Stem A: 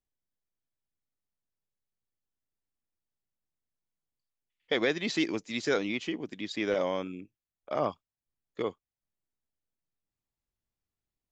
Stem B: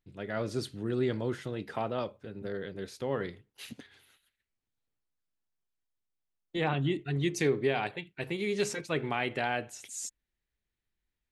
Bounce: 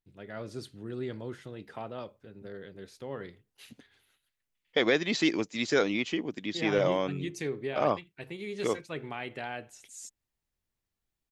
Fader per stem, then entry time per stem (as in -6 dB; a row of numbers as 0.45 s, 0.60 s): +2.5 dB, -6.5 dB; 0.05 s, 0.00 s